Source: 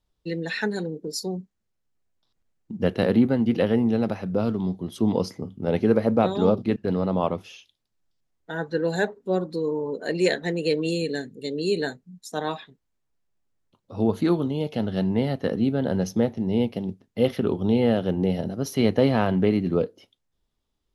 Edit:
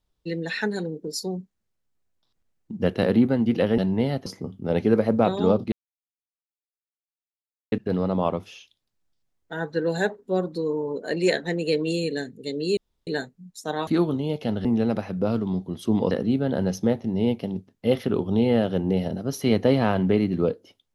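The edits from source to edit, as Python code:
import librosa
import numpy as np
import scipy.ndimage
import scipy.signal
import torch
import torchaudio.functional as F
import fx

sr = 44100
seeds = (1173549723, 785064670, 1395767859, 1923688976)

y = fx.edit(x, sr, fx.swap(start_s=3.78, length_s=1.46, other_s=14.96, other_length_s=0.48),
    fx.insert_silence(at_s=6.7, length_s=2.0),
    fx.insert_room_tone(at_s=11.75, length_s=0.3),
    fx.cut(start_s=12.55, length_s=1.63), tone=tone)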